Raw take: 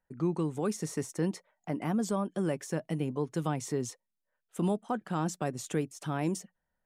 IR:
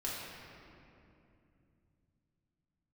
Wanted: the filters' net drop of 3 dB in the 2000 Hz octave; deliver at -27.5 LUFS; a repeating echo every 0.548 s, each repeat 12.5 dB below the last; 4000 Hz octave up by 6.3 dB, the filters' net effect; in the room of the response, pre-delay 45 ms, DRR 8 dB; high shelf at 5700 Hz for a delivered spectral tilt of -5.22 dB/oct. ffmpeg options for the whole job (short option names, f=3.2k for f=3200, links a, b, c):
-filter_complex "[0:a]equalizer=f=2k:t=o:g=-6.5,equalizer=f=4k:t=o:g=6.5,highshelf=f=5.7k:g=8,aecho=1:1:548|1096|1644:0.237|0.0569|0.0137,asplit=2[a][b];[1:a]atrim=start_sample=2205,adelay=45[c];[b][c]afir=irnorm=-1:irlink=0,volume=-11dB[d];[a][d]amix=inputs=2:normalize=0,volume=5dB"